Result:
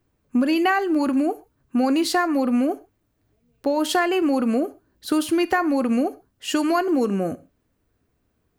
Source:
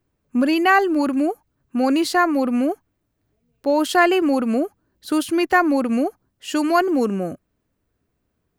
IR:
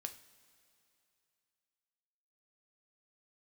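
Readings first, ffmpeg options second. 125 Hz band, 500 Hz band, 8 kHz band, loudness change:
n/a, -2.5 dB, +0.5 dB, -2.5 dB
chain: -filter_complex "[0:a]acompressor=threshold=-20dB:ratio=6,asplit=2[a][b];[1:a]atrim=start_sample=2205,afade=t=out:st=0.2:d=0.01,atrim=end_sample=9261[c];[b][c]afir=irnorm=-1:irlink=0,volume=3dB[d];[a][d]amix=inputs=2:normalize=0,volume=-3dB"

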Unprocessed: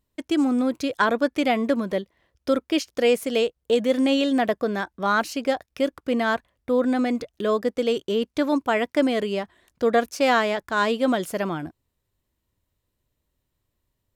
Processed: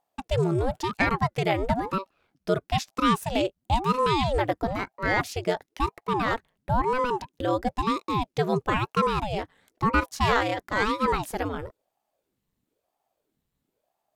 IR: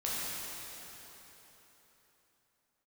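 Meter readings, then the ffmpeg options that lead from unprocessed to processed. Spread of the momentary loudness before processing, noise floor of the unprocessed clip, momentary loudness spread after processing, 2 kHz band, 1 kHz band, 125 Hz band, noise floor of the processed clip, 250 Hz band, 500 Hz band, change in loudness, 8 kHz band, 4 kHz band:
7 LU, -79 dBFS, 8 LU, -2.0 dB, +1.5 dB, n/a, -82 dBFS, -6.5 dB, -5.5 dB, -3.0 dB, -3.0 dB, -3.5 dB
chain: -af "aeval=exprs='val(0)*sin(2*PI*430*n/s+430*0.8/1*sin(2*PI*1*n/s))':c=same"

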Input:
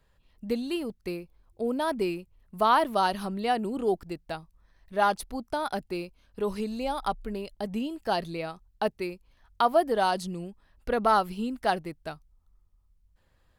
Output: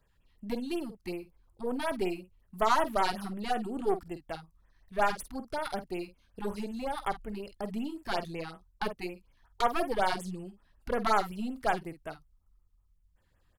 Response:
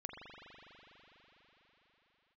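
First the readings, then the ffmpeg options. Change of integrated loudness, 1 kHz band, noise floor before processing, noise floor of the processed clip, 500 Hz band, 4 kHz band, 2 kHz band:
-4.0 dB, -4.5 dB, -67 dBFS, -69 dBFS, -5.0 dB, -4.0 dB, -2.0 dB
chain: -filter_complex "[0:a]aeval=exprs='0.299*(cos(1*acos(clip(val(0)/0.299,-1,1)))-cos(1*PI/2))+0.0376*(cos(6*acos(clip(val(0)/0.299,-1,1)))-cos(6*PI/2))':c=same,asplit=2[a][b];[b]adelay=49,volume=-11.5dB[c];[a][c]amix=inputs=2:normalize=0,afftfilt=real='re*(1-between(b*sr/1024,460*pow(5100/460,0.5+0.5*sin(2*PI*5.4*pts/sr))/1.41,460*pow(5100/460,0.5+0.5*sin(2*PI*5.4*pts/sr))*1.41))':imag='im*(1-between(b*sr/1024,460*pow(5100/460,0.5+0.5*sin(2*PI*5.4*pts/sr))/1.41,460*pow(5100/460,0.5+0.5*sin(2*PI*5.4*pts/sr))*1.41))':win_size=1024:overlap=0.75,volume=-3.5dB"

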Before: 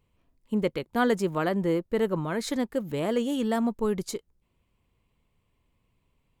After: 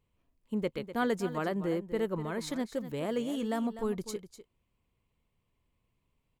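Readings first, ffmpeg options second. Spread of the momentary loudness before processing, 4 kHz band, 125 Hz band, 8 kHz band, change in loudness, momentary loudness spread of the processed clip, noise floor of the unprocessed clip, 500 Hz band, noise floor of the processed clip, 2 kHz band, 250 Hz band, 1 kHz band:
5 LU, -6.0 dB, -6.0 dB, -6.0 dB, -6.0 dB, 5 LU, -74 dBFS, -6.0 dB, -79 dBFS, -6.0 dB, -6.0 dB, -5.5 dB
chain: -af "aecho=1:1:249:0.237,volume=-6dB"

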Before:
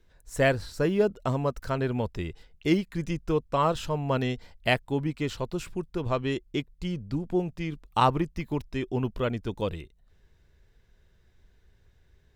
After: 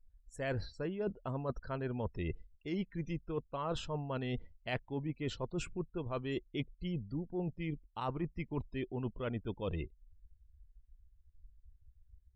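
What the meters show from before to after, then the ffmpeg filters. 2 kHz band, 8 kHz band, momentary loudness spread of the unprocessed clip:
-12.5 dB, -10.5 dB, 9 LU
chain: -af "afftdn=nr=35:nf=-44,areverse,acompressor=threshold=-38dB:ratio=16,areverse,volume=4dB"

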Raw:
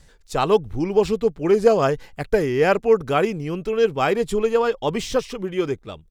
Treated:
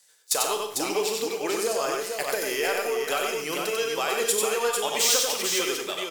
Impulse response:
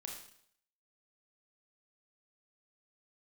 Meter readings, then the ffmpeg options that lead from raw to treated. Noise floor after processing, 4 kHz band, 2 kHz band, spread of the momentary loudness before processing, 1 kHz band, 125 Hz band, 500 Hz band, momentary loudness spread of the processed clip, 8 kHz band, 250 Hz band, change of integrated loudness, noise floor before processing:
-47 dBFS, +7.5 dB, 0.0 dB, 8 LU, -4.5 dB, -21.0 dB, -8.5 dB, 7 LU, n/a, -11.0 dB, -4.0 dB, -53 dBFS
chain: -filter_complex "[0:a]agate=range=-15dB:threshold=-43dB:ratio=16:detection=peak,highpass=530,acompressor=threshold=-29dB:ratio=5,crystalizer=i=4.5:c=0,asoftclip=type=tanh:threshold=-17dB,aecho=1:1:94|448:0.708|0.562,asplit=2[a][b];[1:a]atrim=start_sample=2205,highshelf=f=6.7k:g=6.5[c];[b][c]afir=irnorm=-1:irlink=0,volume=3.5dB[d];[a][d]amix=inputs=2:normalize=0,volume=-3.5dB"

